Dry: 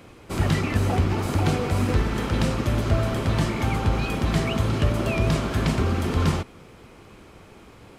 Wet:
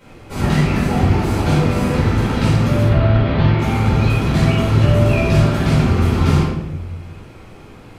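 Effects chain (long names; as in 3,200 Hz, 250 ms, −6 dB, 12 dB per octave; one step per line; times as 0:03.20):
0:02.82–0:03.59: inverse Chebyshev low-pass filter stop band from 9,100 Hz, stop band 50 dB
rectangular room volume 360 cubic metres, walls mixed, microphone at 4.7 metres
level −6 dB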